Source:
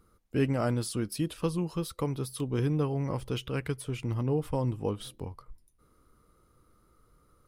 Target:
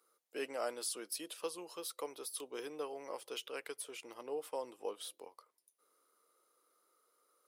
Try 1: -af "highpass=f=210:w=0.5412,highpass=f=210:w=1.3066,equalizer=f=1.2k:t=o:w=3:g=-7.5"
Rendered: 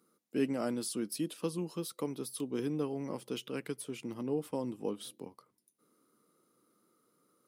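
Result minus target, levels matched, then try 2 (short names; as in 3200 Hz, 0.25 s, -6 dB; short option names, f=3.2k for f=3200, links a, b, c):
250 Hz band +11.0 dB
-af "highpass=f=480:w=0.5412,highpass=f=480:w=1.3066,equalizer=f=1.2k:t=o:w=3:g=-7.5"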